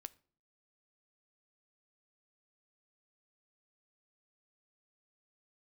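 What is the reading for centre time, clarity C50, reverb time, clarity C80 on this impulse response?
2 ms, 22.5 dB, 0.50 s, 26.5 dB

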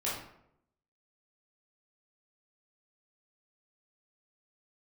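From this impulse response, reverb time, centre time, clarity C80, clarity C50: 0.75 s, 51 ms, 6.0 dB, 2.0 dB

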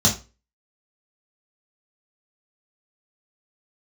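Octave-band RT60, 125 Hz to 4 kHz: 0.30, 0.25, 0.30, 0.30, 0.25, 0.25 s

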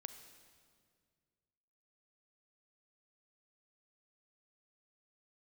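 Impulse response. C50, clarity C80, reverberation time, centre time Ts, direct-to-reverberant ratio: 9.0 dB, 10.0 dB, 2.0 s, 21 ms, 8.5 dB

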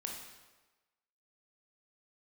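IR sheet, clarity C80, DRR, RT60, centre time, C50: 5.5 dB, 0.0 dB, 1.2 s, 49 ms, 3.0 dB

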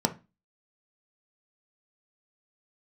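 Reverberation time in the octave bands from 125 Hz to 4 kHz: 0.35, 0.40, 0.25, 0.25, 0.25, 0.25 s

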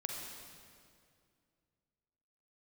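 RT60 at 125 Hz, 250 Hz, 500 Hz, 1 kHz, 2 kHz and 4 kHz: 2.9, 2.7, 2.4, 2.1, 2.0, 1.8 s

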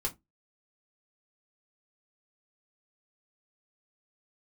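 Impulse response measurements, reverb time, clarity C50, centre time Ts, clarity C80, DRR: not exponential, 20.5 dB, 9 ms, 29.5 dB, 0.0 dB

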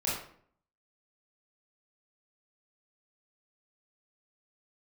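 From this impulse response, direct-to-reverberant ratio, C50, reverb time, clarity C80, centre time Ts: -7.5 dB, 1.5 dB, 0.55 s, 6.5 dB, 52 ms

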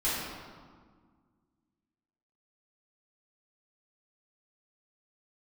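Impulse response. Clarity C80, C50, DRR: 1.0 dB, -2.0 dB, -11.5 dB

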